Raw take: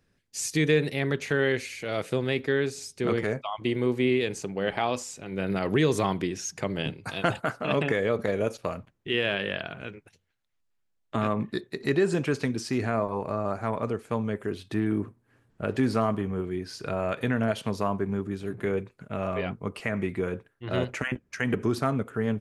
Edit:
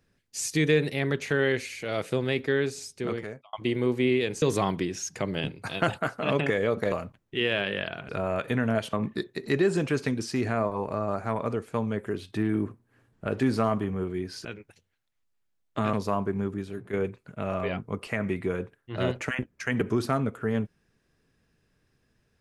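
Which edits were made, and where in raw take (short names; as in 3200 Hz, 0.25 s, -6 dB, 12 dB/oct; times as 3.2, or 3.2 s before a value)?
2.79–3.53 fade out
4.42–5.84 cut
8.34–8.65 cut
9.82–11.3 swap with 16.82–17.66
18.27–18.66 fade out, to -8.5 dB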